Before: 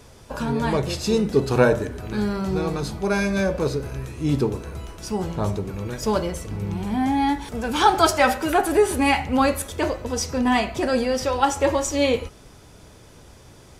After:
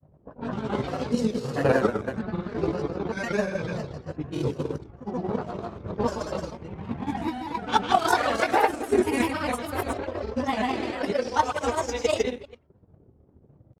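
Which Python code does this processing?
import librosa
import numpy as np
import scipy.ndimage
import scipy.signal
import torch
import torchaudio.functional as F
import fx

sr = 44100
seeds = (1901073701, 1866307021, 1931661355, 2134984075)

y = fx.reverse_delay(x, sr, ms=100, wet_db=0.0)
y = fx.env_lowpass(y, sr, base_hz=370.0, full_db=-13.5)
y = scipy.signal.sosfilt(scipy.signal.butter(2, 82.0, 'highpass', fs=sr, output='sos'), y)
y = fx.hum_notches(y, sr, base_hz=50, count=8)
y = fx.chorus_voices(y, sr, voices=2, hz=0.86, base_ms=24, depth_ms=1.6, mix_pct=50)
y = y + 10.0 ** (-5.0 / 20.0) * np.pad(y, (int(227 * sr / 1000.0), 0))[:len(y)]
y = fx.transient(y, sr, attack_db=9, sustain_db=-9)
y = fx.granulator(y, sr, seeds[0], grain_ms=100.0, per_s=20.0, spray_ms=100.0, spread_st=3)
y = y * librosa.db_to_amplitude(-5.5)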